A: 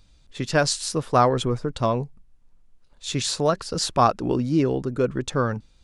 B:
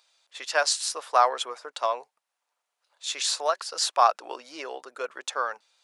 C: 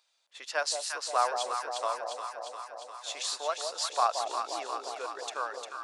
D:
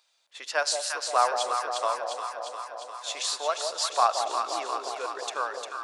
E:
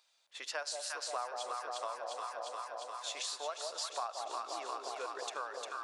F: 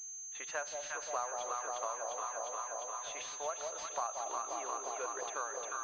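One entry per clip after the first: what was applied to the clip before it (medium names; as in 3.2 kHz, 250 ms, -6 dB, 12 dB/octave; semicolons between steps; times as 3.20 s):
high-pass 650 Hz 24 dB/octave
echo whose repeats swap between lows and highs 176 ms, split 840 Hz, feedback 82%, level -4 dB; trim -7 dB
spring tank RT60 3 s, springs 57 ms, chirp 45 ms, DRR 14.5 dB; trim +4 dB
compression 4:1, threshold -34 dBFS, peak gain reduction 15 dB; trim -3.5 dB
class-D stage that switches slowly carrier 6.3 kHz; trim +1 dB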